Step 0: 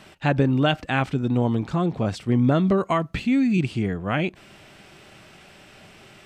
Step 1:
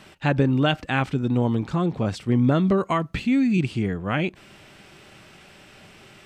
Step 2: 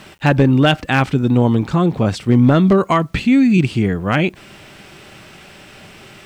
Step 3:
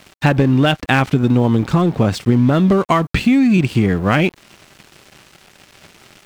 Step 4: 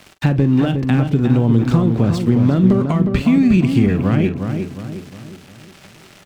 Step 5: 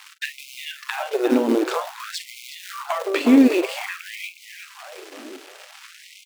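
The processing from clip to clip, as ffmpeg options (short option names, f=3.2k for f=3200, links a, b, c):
-af "equalizer=f=680:t=o:w=0.26:g=-3.5"
-af "asoftclip=type=hard:threshold=-13dB,acrusher=bits=10:mix=0:aa=0.000001,volume=8dB"
-af "acompressor=threshold=-15dB:ratio=6,aeval=exprs='sgn(val(0))*max(abs(val(0))-0.0119,0)':c=same,volume=5.5dB"
-filter_complex "[0:a]acrossover=split=380[a][b];[b]acompressor=threshold=-26dB:ratio=6[c];[a][c]amix=inputs=2:normalize=0,asplit=2[d][e];[e]adelay=43,volume=-13dB[f];[d][f]amix=inputs=2:normalize=0,asplit=2[g][h];[h]adelay=360,lowpass=f=2.1k:p=1,volume=-6dB,asplit=2[i][j];[j]adelay=360,lowpass=f=2.1k:p=1,volume=0.46,asplit=2[k][l];[l]adelay=360,lowpass=f=2.1k:p=1,volume=0.46,asplit=2[m][n];[n]adelay=360,lowpass=f=2.1k:p=1,volume=0.46,asplit=2[o][p];[p]adelay=360,lowpass=f=2.1k:p=1,volume=0.46,asplit=2[q][r];[r]adelay=360,lowpass=f=2.1k:p=1,volume=0.46[s];[i][k][m][o][q][s]amix=inputs=6:normalize=0[t];[g][t]amix=inputs=2:normalize=0"
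-filter_complex "[0:a]aeval=exprs='(tanh(2.24*val(0)+0.65)-tanh(0.65))/2.24':c=same,asplit=2[a][b];[b]acrusher=bits=4:mode=log:mix=0:aa=0.000001,volume=-7dB[c];[a][c]amix=inputs=2:normalize=0,afftfilt=real='re*gte(b*sr/1024,240*pow(2100/240,0.5+0.5*sin(2*PI*0.52*pts/sr)))':imag='im*gte(b*sr/1024,240*pow(2100/240,0.5+0.5*sin(2*PI*0.52*pts/sr)))':win_size=1024:overlap=0.75,volume=2.5dB"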